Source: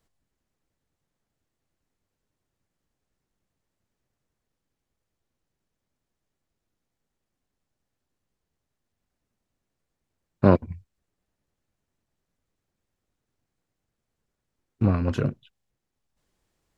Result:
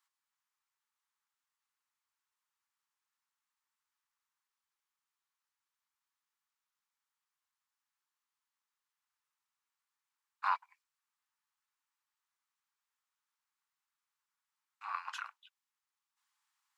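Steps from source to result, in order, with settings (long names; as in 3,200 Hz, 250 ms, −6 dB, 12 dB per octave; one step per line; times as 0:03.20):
Butterworth high-pass 850 Hz 72 dB per octave
parametric band 1,200 Hz +4 dB 0.43 octaves
level −4 dB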